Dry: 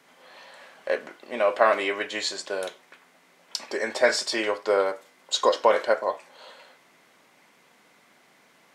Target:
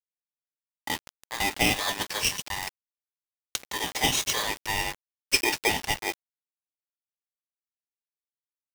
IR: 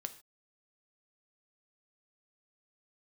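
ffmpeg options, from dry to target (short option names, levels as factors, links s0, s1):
-filter_complex "[0:a]adynamicequalizer=threshold=0.00316:dfrequency=3900:dqfactor=4.9:tfrequency=3900:tqfactor=4.9:attack=5:release=100:ratio=0.375:range=3.5:mode=boostabove:tftype=bell,acrossover=split=360|840|1900[s0][s1][s2][s3];[s0]alimiter=level_in=3.35:limit=0.0631:level=0:latency=1:release=158,volume=0.299[s4];[s1]acompressor=threshold=0.0178:ratio=5[s5];[s4][s5][s2][s3]amix=inputs=4:normalize=0,aeval=exprs='val(0)*gte(abs(val(0)),0.0224)':c=same,aeval=exprs='val(0)*sgn(sin(2*PI*1400*n/s))':c=same"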